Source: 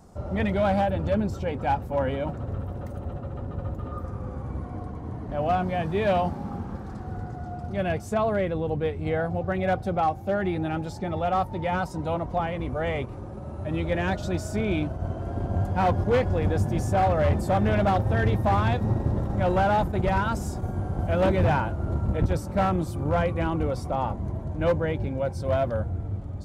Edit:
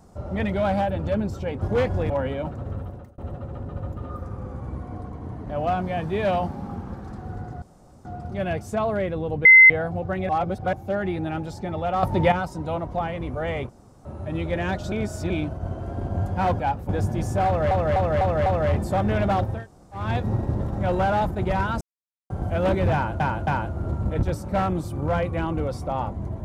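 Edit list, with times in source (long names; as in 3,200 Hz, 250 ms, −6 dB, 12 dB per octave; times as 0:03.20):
0:01.62–0:01.92: swap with 0:15.98–0:16.46
0:02.65–0:03.00: fade out
0:07.44: splice in room tone 0.43 s
0:08.84–0:09.09: beep over 2,060 Hz −6.5 dBFS
0:09.68–0:10.12: reverse
0:11.42–0:11.71: clip gain +9.5 dB
0:13.08–0:13.44: fill with room tone
0:14.31–0:14.69: reverse
0:17.03–0:17.28: repeat, 5 plays
0:18.12–0:18.60: fill with room tone, crossfade 0.24 s
0:20.38–0:20.87: silence
0:21.50–0:21.77: repeat, 3 plays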